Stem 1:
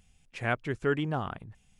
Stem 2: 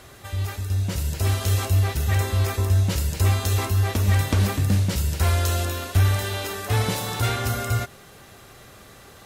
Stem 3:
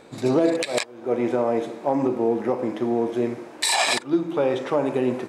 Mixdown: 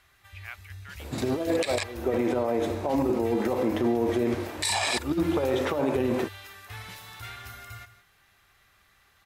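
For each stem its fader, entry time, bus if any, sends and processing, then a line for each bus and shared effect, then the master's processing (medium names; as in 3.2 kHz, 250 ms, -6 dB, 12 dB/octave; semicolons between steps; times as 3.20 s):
-19.5 dB, 0.00 s, no send, no echo send, high-pass 790 Hz 24 dB/octave; peaking EQ 2.4 kHz +15 dB 1.3 oct
-14.5 dB, 0.00 s, no send, echo send -14 dB, graphic EQ 125/250/500/2000/8000 Hz -7/-8/-11/+5/-5 dB
+1.5 dB, 1.00 s, no send, no echo send, compressor with a negative ratio -23 dBFS, ratio -0.5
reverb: none
echo: delay 161 ms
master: peak limiter -16.5 dBFS, peak gain reduction 10.5 dB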